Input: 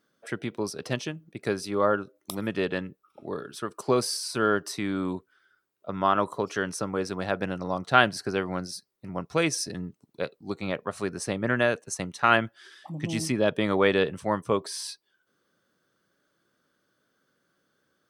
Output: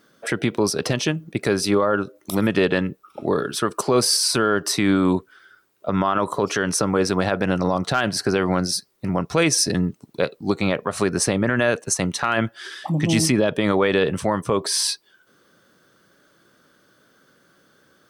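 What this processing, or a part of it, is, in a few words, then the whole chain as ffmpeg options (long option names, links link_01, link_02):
loud club master: -af "acompressor=threshold=-31dB:ratio=1.5,asoftclip=type=hard:threshold=-11.5dB,alimiter=level_in=22dB:limit=-1dB:release=50:level=0:latency=1,volume=-7.5dB"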